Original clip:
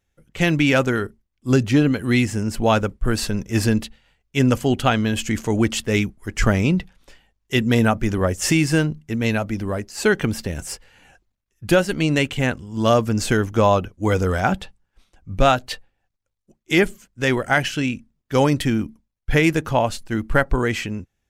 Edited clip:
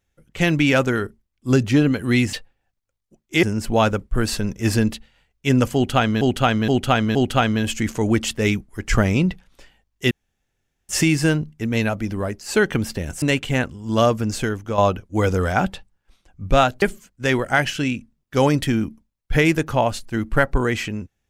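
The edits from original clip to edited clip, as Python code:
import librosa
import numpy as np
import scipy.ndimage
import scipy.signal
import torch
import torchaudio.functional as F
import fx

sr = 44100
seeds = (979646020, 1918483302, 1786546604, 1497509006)

y = fx.edit(x, sr, fx.repeat(start_s=4.64, length_s=0.47, count=4),
    fx.room_tone_fill(start_s=7.6, length_s=0.78),
    fx.cut(start_s=10.71, length_s=1.39),
    fx.fade_out_to(start_s=12.87, length_s=0.79, floor_db=-9.5),
    fx.move(start_s=15.7, length_s=1.1, to_s=2.33), tone=tone)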